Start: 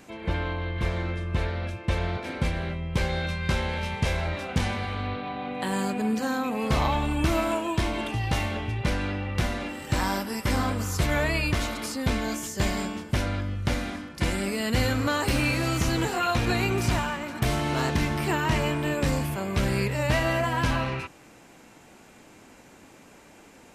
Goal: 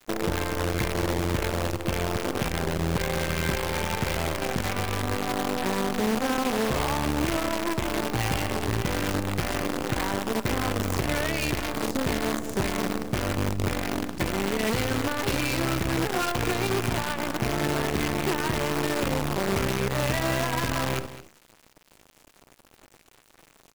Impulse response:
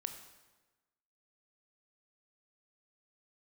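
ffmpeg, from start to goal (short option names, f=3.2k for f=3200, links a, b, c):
-filter_complex "[0:a]afwtdn=0.02,highpass=56,equalizer=f=390:t=o:w=0.69:g=6,bandreject=f=76.72:t=h:w=4,bandreject=f=153.44:t=h:w=4,bandreject=f=230.16:t=h:w=4,acompressor=threshold=-37dB:ratio=4,asplit=2[a][b];[b]alimiter=level_in=11dB:limit=-24dB:level=0:latency=1:release=162,volume=-11dB,volume=0dB[c];[a][c]amix=inputs=2:normalize=0,acontrast=75,acrusher=bits=5:dc=4:mix=0:aa=0.000001,aecho=1:1:214:0.188"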